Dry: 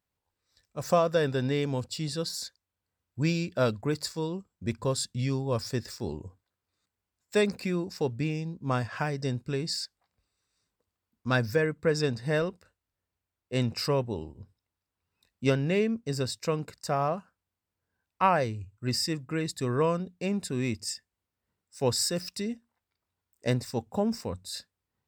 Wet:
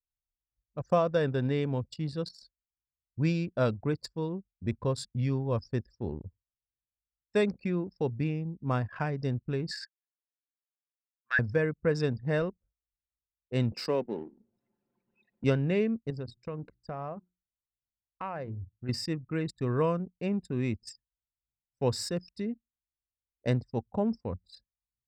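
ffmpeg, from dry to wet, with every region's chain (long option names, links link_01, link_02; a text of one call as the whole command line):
ffmpeg -i in.wav -filter_complex "[0:a]asettb=1/sr,asplit=3[link_01][link_02][link_03];[link_01]atrim=end=9.714[link_04];[link_02]atrim=start=9.71:end=11.39,asetpts=PTS-STARTPTS,afade=type=in:duration=0.004:curve=qsin,afade=type=out:start_time=1.676:duration=0.004:curve=qsin,acompressor=threshold=-29dB:ratio=2.5:attack=3.2:release=140:knee=1:detection=peak,highpass=frequency=1700:width_type=q:width=9.9[link_05];[link_03]atrim=start=11.386[link_06];[link_04][link_05]acrossfade=duration=0.004:curve1=hsin:curve2=qsin[link_07];[link_07][link_06]acrossfade=duration=0.004:curve1=qsin:curve2=hsin,asettb=1/sr,asplit=3[link_08][link_09][link_10];[link_08]atrim=end=13.724[link_11];[link_09]atrim=start=13.72:end=15.44,asetpts=PTS-STARTPTS,afade=type=in:duration=0.004:curve=qsin,afade=type=out:start_time=1.716:duration=0.004:curve=qsin,aeval=exprs='val(0)+0.5*0.00944*sgn(val(0))':channel_layout=same,highpass=frequency=200:width=0.5412,highpass=frequency=200:width=1.3066,equalizer=frequency=1200:width_type=o:width=0.44:gain=-4.5[link_12];[link_10]atrim=start=15.436[link_13];[link_11][link_12]acrossfade=duration=0.004:curve1=hsin:curve2=qsin[link_14];[link_14][link_13]acrossfade=duration=0.004:curve1=qsin:curve2=hsin,asettb=1/sr,asplit=3[link_15][link_16][link_17];[link_15]atrim=end=16.104[link_18];[link_16]atrim=start=16.1:end=18.89,asetpts=PTS-STARTPTS,afade=type=in:duration=0.004:curve=qsin,afade=type=out:start_time=2.786:duration=0.004:curve=qsin,bandreject=frequency=60:width_type=h:width=6,bandreject=frequency=120:width_type=h:width=6,bandreject=frequency=180:width_type=h:width=6,bandreject=frequency=240:width_type=h:width=6,bandreject=frequency=300:width_type=h:width=6,bandreject=frequency=360:width_type=h:width=6,acompressor=threshold=-35dB:ratio=2.5:attack=3.2:release=140:knee=1:detection=peak[link_19];[link_17]atrim=start=18.886[link_20];[link_18][link_19]acrossfade=duration=0.004:curve1=hsin:curve2=qsin[link_21];[link_21][link_20]acrossfade=duration=0.004:curve1=qsin:curve2=hsin,lowpass=frequency=3200:poles=1,anlmdn=1,lowshelf=frequency=150:gain=4.5,volume=-2dB" out.wav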